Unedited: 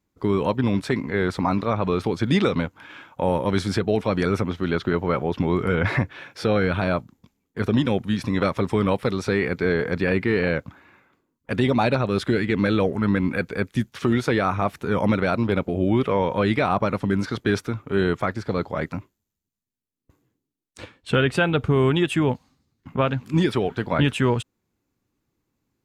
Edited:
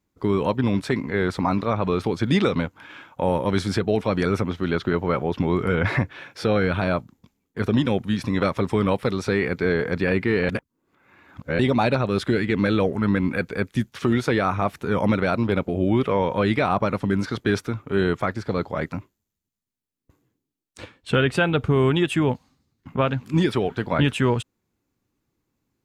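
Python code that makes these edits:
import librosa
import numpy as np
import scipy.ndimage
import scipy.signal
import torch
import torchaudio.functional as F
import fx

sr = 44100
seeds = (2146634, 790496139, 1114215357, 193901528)

y = fx.edit(x, sr, fx.reverse_span(start_s=10.49, length_s=1.1), tone=tone)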